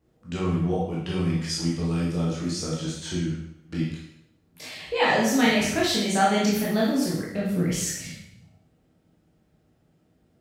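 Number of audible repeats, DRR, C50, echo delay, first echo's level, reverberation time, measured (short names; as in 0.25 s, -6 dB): none, -6.0 dB, 1.0 dB, none, none, 0.80 s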